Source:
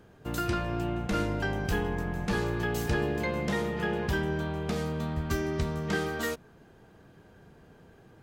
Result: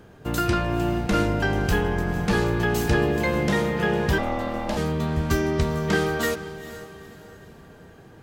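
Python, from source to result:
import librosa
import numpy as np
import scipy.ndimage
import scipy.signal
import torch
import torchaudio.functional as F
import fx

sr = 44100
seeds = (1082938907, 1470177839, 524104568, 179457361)

y = fx.echo_diffused(x, sr, ms=471, feedback_pct=41, wet_db=-14.0)
y = fx.ring_mod(y, sr, carrier_hz=410.0, at=(4.18, 4.77))
y = F.gain(torch.from_numpy(y), 7.0).numpy()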